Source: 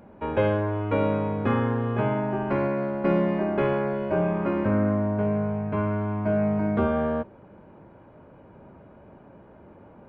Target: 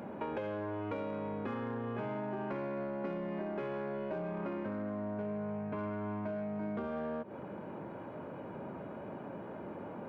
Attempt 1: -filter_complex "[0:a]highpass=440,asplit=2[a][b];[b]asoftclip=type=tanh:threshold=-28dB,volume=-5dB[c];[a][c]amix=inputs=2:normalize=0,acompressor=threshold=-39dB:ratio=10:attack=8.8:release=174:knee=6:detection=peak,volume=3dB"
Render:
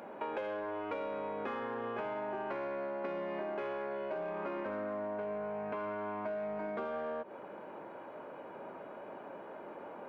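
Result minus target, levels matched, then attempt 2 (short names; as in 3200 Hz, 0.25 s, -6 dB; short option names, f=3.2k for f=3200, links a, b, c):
125 Hz band -11.0 dB
-filter_complex "[0:a]highpass=150,asplit=2[a][b];[b]asoftclip=type=tanh:threshold=-28dB,volume=-5dB[c];[a][c]amix=inputs=2:normalize=0,acompressor=threshold=-39dB:ratio=10:attack=8.8:release=174:knee=6:detection=peak,volume=3dB"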